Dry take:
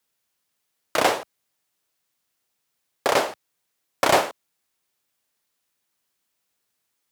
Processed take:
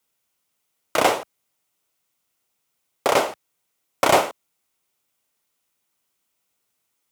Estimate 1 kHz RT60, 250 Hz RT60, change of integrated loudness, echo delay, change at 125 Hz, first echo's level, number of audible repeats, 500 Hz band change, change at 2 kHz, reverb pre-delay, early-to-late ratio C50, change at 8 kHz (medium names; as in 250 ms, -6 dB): no reverb, no reverb, +1.5 dB, no echo, +2.0 dB, no echo, no echo, +2.0 dB, 0.0 dB, no reverb, no reverb, +1.5 dB